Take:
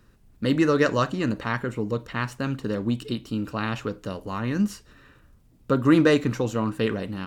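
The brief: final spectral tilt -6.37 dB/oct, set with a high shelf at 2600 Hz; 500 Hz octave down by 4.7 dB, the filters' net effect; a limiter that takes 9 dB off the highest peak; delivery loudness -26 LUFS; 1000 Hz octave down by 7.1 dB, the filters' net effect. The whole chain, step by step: bell 500 Hz -4 dB; bell 1000 Hz -7 dB; high shelf 2600 Hz -7 dB; gain +4 dB; limiter -14 dBFS

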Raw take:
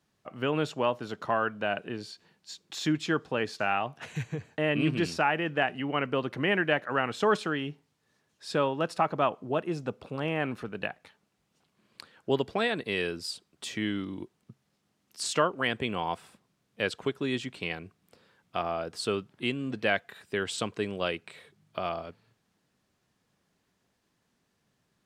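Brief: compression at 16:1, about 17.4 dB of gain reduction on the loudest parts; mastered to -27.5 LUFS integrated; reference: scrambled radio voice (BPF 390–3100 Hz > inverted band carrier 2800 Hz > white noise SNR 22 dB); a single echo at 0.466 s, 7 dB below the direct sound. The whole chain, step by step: compressor 16:1, threshold -38 dBFS; BPF 390–3100 Hz; echo 0.466 s -7 dB; inverted band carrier 2800 Hz; white noise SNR 22 dB; gain +17.5 dB

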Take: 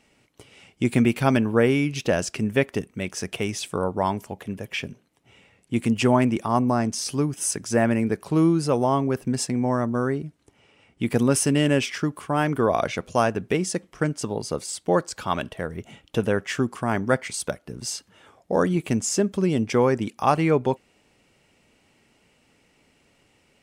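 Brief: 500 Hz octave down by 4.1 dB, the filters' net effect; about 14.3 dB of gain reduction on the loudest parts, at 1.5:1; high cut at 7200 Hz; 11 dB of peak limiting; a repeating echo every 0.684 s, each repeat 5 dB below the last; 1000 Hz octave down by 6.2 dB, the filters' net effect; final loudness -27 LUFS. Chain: LPF 7200 Hz; bell 500 Hz -3.5 dB; bell 1000 Hz -7 dB; compressor 1.5:1, threshold -58 dBFS; limiter -35 dBFS; feedback echo 0.684 s, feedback 56%, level -5 dB; gain +16.5 dB

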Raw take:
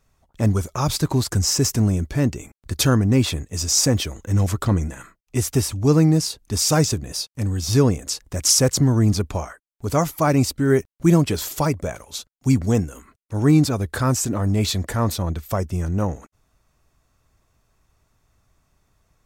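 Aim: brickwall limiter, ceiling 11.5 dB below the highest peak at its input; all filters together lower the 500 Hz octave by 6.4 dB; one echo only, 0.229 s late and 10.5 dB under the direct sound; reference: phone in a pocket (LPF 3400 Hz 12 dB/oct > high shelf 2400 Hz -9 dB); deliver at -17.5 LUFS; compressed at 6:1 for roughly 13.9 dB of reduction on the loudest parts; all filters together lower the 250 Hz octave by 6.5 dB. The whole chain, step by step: bell 250 Hz -8 dB; bell 500 Hz -5 dB; compressor 6:1, threshold -28 dBFS; limiter -27.5 dBFS; LPF 3400 Hz 12 dB/oct; high shelf 2400 Hz -9 dB; echo 0.229 s -10.5 dB; gain +20.5 dB

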